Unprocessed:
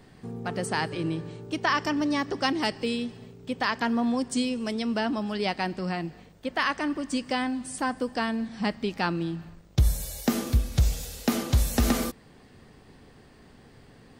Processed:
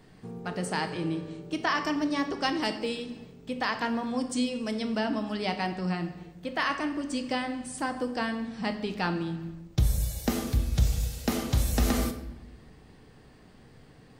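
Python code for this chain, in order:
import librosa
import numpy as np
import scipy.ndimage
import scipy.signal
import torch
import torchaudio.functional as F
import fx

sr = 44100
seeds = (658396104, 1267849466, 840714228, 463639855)

y = fx.room_shoebox(x, sr, seeds[0], volume_m3=360.0, walls='mixed', distance_m=0.57)
y = F.gain(torch.from_numpy(y), -3.0).numpy()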